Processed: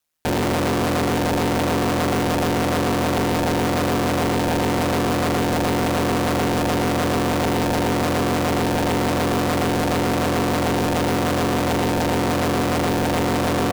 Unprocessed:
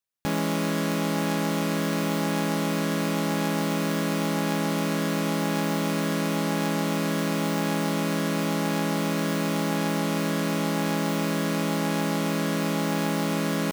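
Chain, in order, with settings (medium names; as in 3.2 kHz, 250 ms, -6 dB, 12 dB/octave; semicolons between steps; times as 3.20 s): sine folder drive 9 dB, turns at -16 dBFS; ring modulator 79 Hz; feedback echo behind a band-pass 269 ms, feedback 66%, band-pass 520 Hz, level -11 dB; trim +1.5 dB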